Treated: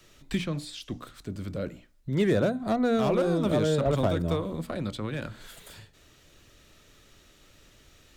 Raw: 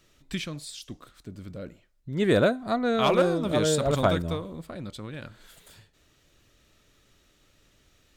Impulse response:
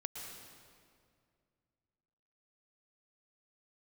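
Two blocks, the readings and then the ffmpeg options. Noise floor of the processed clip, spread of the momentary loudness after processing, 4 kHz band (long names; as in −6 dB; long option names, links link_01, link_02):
−59 dBFS, 16 LU, −4.5 dB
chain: -filter_complex "[0:a]bandreject=frequency=60:width_type=h:width=6,bandreject=frequency=120:width_type=h:width=6,bandreject=frequency=180:width_type=h:width=6,bandreject=frequency=240:width_type=h:width=6,bandreject=frequency=300:width_type=h:width=6,acrossover=split=220|770|3500[link_01][link_02][link_03][link_04];[link_01]acompressor=threshold=-34dB:ratio=4[link_05];[link_02]acompressor=threshold=-32dB:ratio=4[link_06];[link_03]acompressor=threshold=-41dB:ratio=4[link_07];[link_04]acompressor=threshold=-54dB:ratio=4[link_08];[link_05][link_06][link_07][link_08]amix=inputs=4:normalize=0,acrossover=split=800|6600[link_09][link_10][link_11];[link_10]asoftclip=type=hard:threshold=-38.5dB[link_12];[link_09][link_12][link_11]amix=inputs=3:normalize=0,volume=6dB"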